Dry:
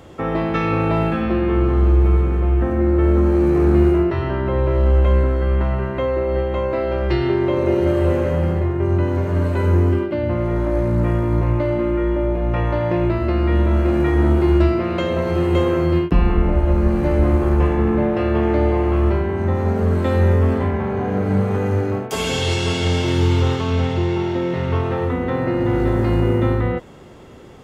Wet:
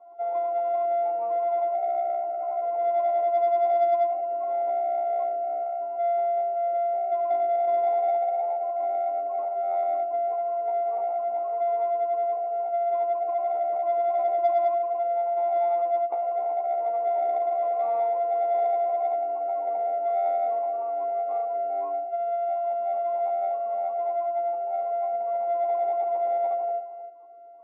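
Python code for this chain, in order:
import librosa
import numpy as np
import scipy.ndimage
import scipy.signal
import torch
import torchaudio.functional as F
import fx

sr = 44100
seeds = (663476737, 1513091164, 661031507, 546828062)

p1 = np.r_[np.sort(x[:len(x) // 64 * 64].reshape(-1, 64), axis=1).ravel(), x[len(x) // 64 * 64:]]
p2 = scipy.signal.sosfilt(scipy.signal.butter(4, 330.0, 'highpass', fs=sr, output='sos'), p1)
p3 = p2 + fx.echo_single(p2, sr, ms=300, db=-12.0, dry=0)
p4 = fx.spec_gate(p3, sr, threshold_db=-15, keep='strong')
p5 = fx.formant_cascade(p4, sr, vowel='a')
p6 = fx.doubler(p5, sr, ms=13.0, db=-2)
p7 = 10.0 ** (-23.5 / 20.0) * np.tanh(p6 / 10.0 ** (-23.5 / 20.0))
p8 = p6 + (p7 * 10.0 ** (-7.5 / 20.0))
y = p8 * 10.0 ** (-2.5 / 20.0)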